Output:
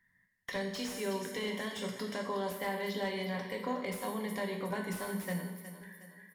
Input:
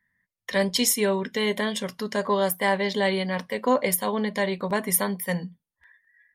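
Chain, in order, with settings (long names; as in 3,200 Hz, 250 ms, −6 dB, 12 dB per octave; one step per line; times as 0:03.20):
downward compressor 3 to 1, threshold −40 dBFS, peak gain reduction 17 dB
coupled-rooms reverb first 0.79 s, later 2.7 s, DRR 2 dB
0:04.70–0:05.14: steady tone 1,500 Hz −48 dBFS
on a send: repeating echo 364 ms, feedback 44%, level −13 dB
on the sum: slew-rate limiting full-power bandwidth 44 Hz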